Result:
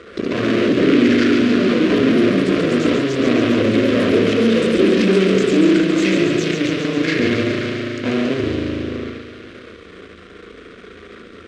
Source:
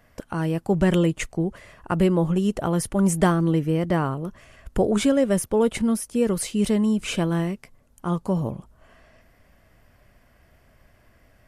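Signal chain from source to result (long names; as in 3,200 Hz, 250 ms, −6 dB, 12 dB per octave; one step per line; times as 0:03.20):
pitch shift by two crossfaded delay taps −6 semitones
low-shelf EQ 470 Hz +2.5 dB
spring reverb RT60 1.7 s, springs 37 ms, chirp 55 ms, DRR −0.5 dB
in parallel at −8.5 dB: fuzz pedal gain 41 dB, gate −39 dBFS
on the sum: delay with pitch and tempo change per echo 98 ms, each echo +3 semitones, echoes 3
power curve on the samples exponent 0.5
Chebyshev band-pass filter 150–3,100 Hz, order 2
phaser with its sweep stopped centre 350 Hz, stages 4
on a send: delay with a high-pass on its return 138 ms, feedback 73%, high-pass 2,500 Hz, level −5 dB
on the sum: level −2 dB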